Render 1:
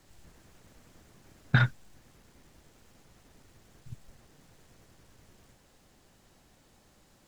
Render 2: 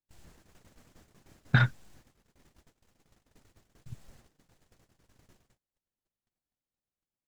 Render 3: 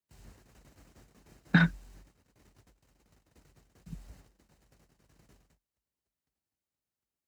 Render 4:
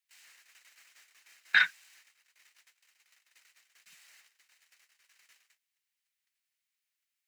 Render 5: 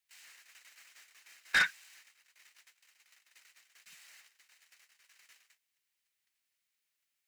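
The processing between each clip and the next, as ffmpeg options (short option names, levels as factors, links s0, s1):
-af "agate=range=0.0141:threshold=0.00158:ratio=16:detection=peak"
-af "afreqshift=45,bandreject=f=3400:w=14"
-af "highpass=f=2100:t=q:w=1.9,volume=1.78"
-af "asoftclip=type=tanh:threshold=0.0708,volume=1.26"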